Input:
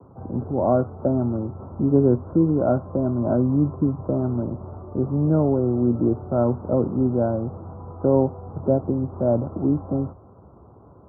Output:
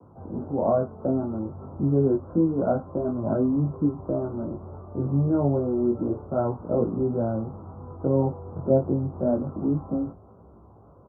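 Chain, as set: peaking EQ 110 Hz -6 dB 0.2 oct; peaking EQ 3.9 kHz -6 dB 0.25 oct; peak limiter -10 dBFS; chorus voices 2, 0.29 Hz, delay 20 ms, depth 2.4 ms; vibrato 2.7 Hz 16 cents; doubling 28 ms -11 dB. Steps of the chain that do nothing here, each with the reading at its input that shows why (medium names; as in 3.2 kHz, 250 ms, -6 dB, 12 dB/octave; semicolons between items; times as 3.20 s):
peaking EQ 3.9 kHz: input has nothing above 1.1 kHz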